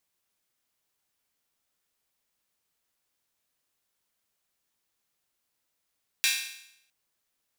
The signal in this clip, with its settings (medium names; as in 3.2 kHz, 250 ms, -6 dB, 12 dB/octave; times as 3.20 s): open hi-hat length 0.66 s, high-pass 2.3 kHz, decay 0.75 s